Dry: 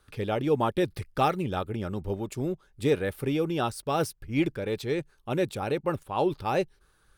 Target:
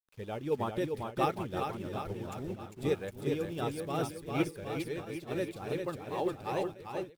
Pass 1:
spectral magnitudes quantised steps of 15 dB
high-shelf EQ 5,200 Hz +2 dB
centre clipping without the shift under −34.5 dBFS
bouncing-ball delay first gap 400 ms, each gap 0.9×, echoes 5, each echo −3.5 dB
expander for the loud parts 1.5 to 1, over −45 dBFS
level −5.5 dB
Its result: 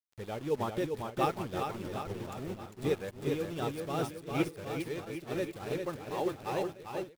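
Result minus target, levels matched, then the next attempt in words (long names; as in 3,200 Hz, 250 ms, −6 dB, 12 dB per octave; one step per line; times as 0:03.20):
centre clipping without the shift: distortion +10 dB
spectral magnitudes quantised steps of 15 dB
high-shelf EQ 5,200 Hz +2 dB
centre clipping without the shift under −43 dBFS
bouncing-ball delay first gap 400 ms, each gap 0.9×, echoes 5, each echo −3.5 dB
expander for the loud parts 1.5 to 1, over −45 dBFS
level −5.5 dB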